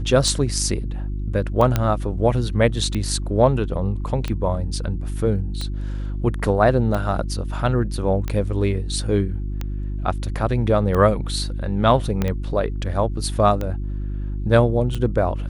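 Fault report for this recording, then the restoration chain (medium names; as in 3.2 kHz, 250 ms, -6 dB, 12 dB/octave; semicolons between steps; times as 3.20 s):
hum 50 Hz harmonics 7 -26 dBFS
tick 45 rpm
1.76 s: pop -6 dBFS
12.22 s: pop -9 dBFS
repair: de-click; de-hum 50 Hz, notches 7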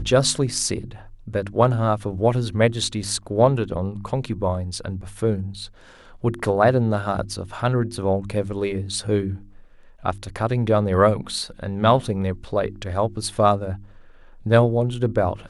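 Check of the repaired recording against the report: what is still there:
1.76 s: pop
12.22 s: pop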